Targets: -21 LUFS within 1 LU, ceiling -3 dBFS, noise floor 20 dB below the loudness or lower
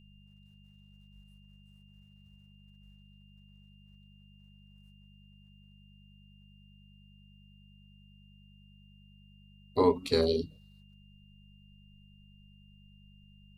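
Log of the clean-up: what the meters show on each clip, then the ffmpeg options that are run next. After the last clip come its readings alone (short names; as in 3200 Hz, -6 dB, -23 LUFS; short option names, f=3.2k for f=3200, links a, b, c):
hum 50 Hz; harmonics up to 200 Hz; hum level -56 dBFS; steady tone 2800 Hz; tone level -65 dBFS; loudness -29.0 LUFS; peak -11.5 dBFS; loudness target -21.0 LUFS
-> -af "bandreject=f=50:t=h:w=4,bandreject=f=100:t=h:w=4,bandreject=f=150:t=h:w=4,bandreject=f=200:t=h:w=4"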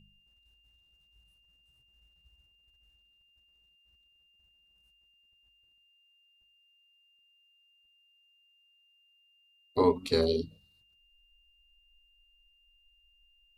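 hum none; steady tone 2800 Hz; tone level -65 dBFS
-> -af "bandreject=f=2.8k:w=30"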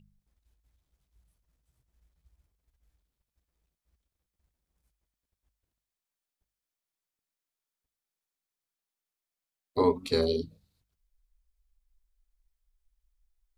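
steady tone none; loudness -28.5 LUFS; peak -12.0 dBFS; loudness target -21.0 LUFS
-> -af "volume=7.5dB"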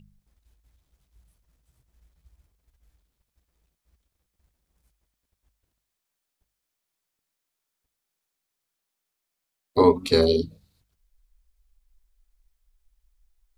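loudness -21.5 LUFS; peak -4.5 dBFS; noise floor -83 dBFS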